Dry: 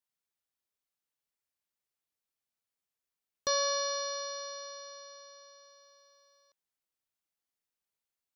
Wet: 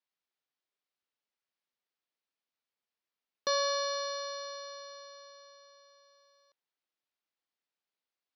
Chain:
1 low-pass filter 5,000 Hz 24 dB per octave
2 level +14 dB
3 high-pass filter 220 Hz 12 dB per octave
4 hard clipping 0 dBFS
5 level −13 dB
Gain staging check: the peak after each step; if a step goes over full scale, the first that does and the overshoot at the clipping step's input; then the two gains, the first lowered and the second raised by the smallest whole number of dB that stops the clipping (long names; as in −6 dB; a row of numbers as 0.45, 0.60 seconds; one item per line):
−20.0, −6.0, −5.5, −5.5, −18.5 dBFS
no step passes full scale